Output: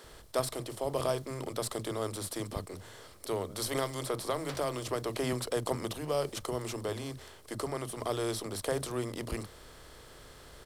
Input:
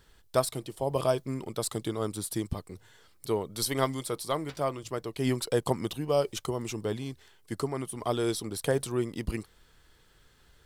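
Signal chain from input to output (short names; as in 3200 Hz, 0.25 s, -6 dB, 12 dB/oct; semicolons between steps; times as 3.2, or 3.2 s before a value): per-bin compression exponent 0.6; bands offset in time highs, lows 40 ms, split 230 Hz; 3.73–5.33 three-band squash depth 100%; gain -7 dB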